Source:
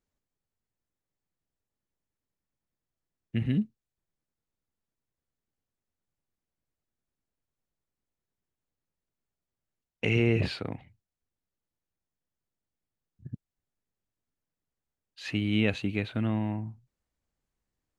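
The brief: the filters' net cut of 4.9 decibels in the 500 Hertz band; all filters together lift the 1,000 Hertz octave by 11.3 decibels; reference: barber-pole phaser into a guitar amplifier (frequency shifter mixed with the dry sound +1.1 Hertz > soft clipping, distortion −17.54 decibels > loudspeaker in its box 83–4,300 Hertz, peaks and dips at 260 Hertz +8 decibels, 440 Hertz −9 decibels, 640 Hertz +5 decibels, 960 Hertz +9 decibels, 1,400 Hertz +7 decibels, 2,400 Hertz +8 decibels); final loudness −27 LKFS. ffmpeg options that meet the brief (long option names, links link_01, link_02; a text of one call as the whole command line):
ffmpeg -i in.wav -filter_complex "[0:a]equalizer=frequency=500:width_type=o:gain=-6.5,equalizer=frequency=1000:width_type=o:gain=7.5,asplit=2[link_01][link_02];[link_02]afreqshift=1.1[link_03];[link_01][link_03]amix=inputs=2:normalize=1,asoftclip=threshold=-22dB,highpass=83,equalizer=frequency=260:width_type=q:width=4:gain=8,equalizer=frequency=440:width_type=q:width=4:gain=-9,equalizer=frequency=640:width_type=q:width=4:gain=5,equalizer=frequency=960:width_type=q:width=4:gain=9,equalizer=frequency=1400:width_type=q:width=4:gain=7,equalizer=frequency=2400:width_type=q:width=4:gain=8,lowpass=frequency=4300:width=0.5412,lowpass=frequency=4300:width=1.3066,volume=5dB" out.wav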